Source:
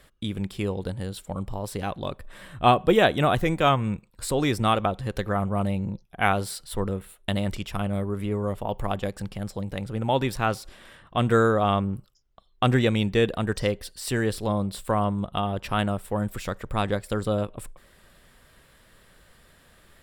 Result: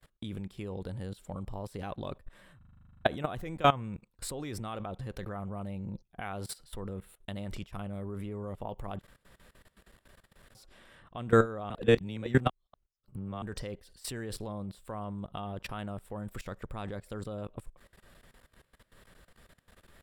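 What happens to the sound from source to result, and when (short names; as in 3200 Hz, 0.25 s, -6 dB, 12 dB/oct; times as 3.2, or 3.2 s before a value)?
2.57 stutter in place 0.04 s, 12 plays
9–10.55 room tone
11.7–13.42 reverse
whole clip: gate with hold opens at -47 dBFS; high shelf 2000 Hz -3.5 dB; level quantiser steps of 19 dB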